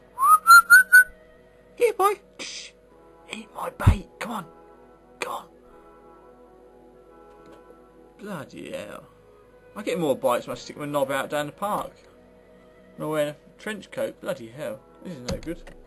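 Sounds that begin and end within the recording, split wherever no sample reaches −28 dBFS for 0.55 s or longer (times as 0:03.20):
0:01.80–0:02.65
0:03.33–0:04.41
0:05.21–0:05.38
0:08.30–0:08.96
0:09.77–0:11.86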